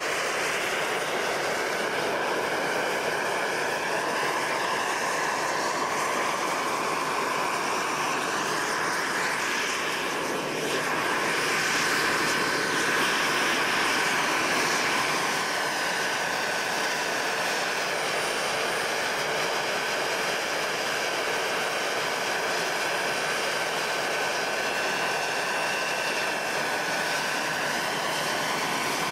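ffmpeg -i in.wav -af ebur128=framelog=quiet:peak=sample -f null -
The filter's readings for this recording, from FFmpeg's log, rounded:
Integrated loudness:
  I:         -25.7 LUFS
  Threshold: -35.7 LUFS
Loudness range:
  LRA:         2.9 LU
  Threshold: -45.6 LUFS
  LRA low:   -26.4 LUFS
  LRA high:  -23.5 LUFS
Sample peak:
  Peak:      -17.1 dBFS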